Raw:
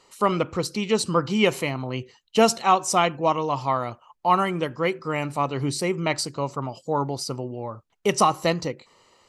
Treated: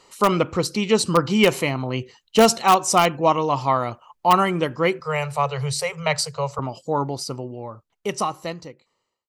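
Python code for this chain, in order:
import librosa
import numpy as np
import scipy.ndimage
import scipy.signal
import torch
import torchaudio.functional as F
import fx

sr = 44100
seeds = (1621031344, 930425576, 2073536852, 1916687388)

p1 = fx.fade_out_tail(x, sr, length_s=2.98)
p2 = fx.cheby1_bandstop(p1, sr, low_hz=160.0, high_hz=430.0, order=5, at=(5.0, 6.59))
p3 = (np.mod(10.0 ** (9.0 / 20.0) * p2 + 1.0, 2.0) - 1.0) / 10.0 ** (9.0 / 20.0)
p4 = p2 + F.gain(torch.from_numpy(p3), -8.5).numpy()
y = F.gain(torch.from_numpy(p4), 1.0).numpy()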